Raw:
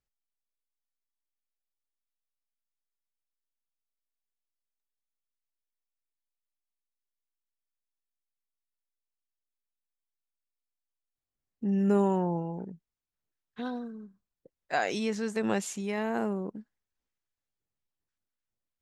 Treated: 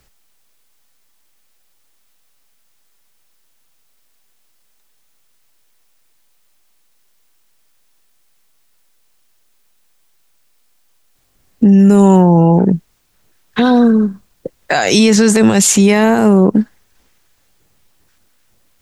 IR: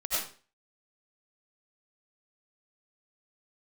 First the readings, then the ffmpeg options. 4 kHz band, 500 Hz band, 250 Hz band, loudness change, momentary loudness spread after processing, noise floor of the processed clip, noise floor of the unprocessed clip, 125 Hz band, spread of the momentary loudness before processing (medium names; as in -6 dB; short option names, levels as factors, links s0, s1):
+23.5 dB, +18.0 dB, +21.5 dB, +20.0 dB, 10 LU, -57 dBFS, under -85 dBFS, +22.0 dB, 15 LU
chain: -filter_complex "[0:a]acrossover=split=160|4000[s0][s1][s2];[s1]acompressor=threshold=0.0178:ratio=6[s3];[s0][s3][s2]amix=inputs=3:normalize=0,alimiter=level_in=47.3:limit=0.891:release=50:level=0:latency=1,volume=0.891"